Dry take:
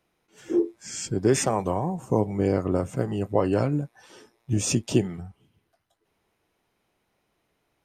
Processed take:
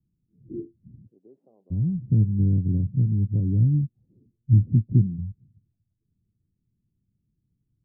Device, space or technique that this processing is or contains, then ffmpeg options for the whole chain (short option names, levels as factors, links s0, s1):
the neighbour's flat through the wall: -filter_complex "[0:a]asplit=3[s0][s1][s2];[s0]afade=t=out:st=1.05:d=0.02[s3];[s1]highpass=f=590:w=0.5412,highpass=f=590:w=1.3066,afade=t=in:st=1.05:d=0.02,afade=t=out:st=1.7:d=0.02[s4];[s2]afade=t=in:st=1.7:d=0.02[s5];[s3][s4][s5]amix=inputs=3:normalize=0,lowpass=f=210:w=0.5412,lowpass=f=210:w=1.3066,equalizer=f=110:t=o:w=0.67:g=6.5,volume=1.68"